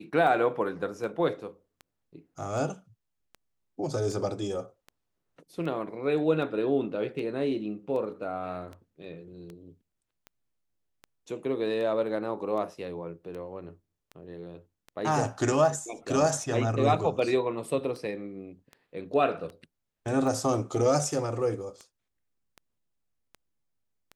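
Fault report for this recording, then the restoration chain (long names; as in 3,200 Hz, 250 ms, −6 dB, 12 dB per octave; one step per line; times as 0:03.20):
scratch tick 78 rpm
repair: click removal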